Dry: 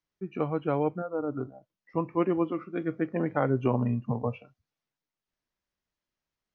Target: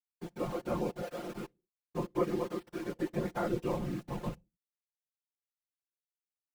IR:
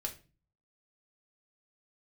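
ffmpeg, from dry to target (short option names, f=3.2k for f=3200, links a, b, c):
-filter_complex "[0:a]flanger=delay=17.5:depth=4.6:speed=0.92,aeval=exprs='val(0)*gte(abs(val(0)),0.0119)':c=same,asplit=2[a][b];[1:a]atrim=start_sample=2205,afade=t=out:st=0.36:d=0.01,atrim=end_sample=16317,asetrate=57330,aresample=44100[c];[b][c]afir=irnorm=-1:irlink=0,volume=-17dB[d];[a][d]amix=inputs=2:normalize=0,afftfilt=real='hypot(re,im)*cos(2*PI*random(0))':imag='hypot(re,im)*sin(2*PI*random(1))':win_size=512:overlap=0.75,aecho=1:1:5.7:0.7"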